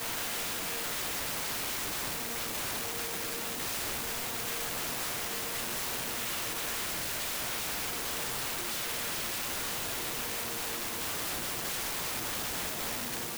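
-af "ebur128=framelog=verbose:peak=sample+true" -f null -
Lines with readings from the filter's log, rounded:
Integrated loudness:
  I:         -32.4 LUFS
  Threshold: -42.4 LUFS
Loudness range:
  LRA:         0.5 LU
  Threshold: -52.4 LUFS
  LRA low:   -32.6 LUFS
  LRA high:  -32.1 LUFS
Sample peak:
  Peak:      -29.9 dBFS
True peak:
  Peak:      -24.7 dBFS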